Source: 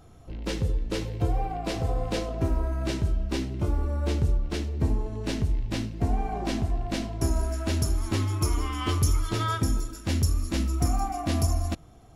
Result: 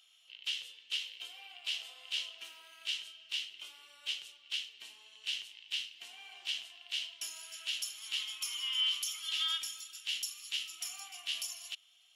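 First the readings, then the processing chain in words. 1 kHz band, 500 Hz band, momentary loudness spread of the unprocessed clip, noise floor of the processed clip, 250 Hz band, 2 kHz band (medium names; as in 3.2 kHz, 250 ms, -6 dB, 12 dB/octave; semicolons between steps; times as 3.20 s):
-23.0 dB, under -30 dB, 5 LU, -65 dBFS, under -40 dB, -2.5 dB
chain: resonant high-pass 3 kHz, resonance Q 8.4; peak limiter -20 dBFS, peak gain reduction 8.5 dB; trim -4.5 dB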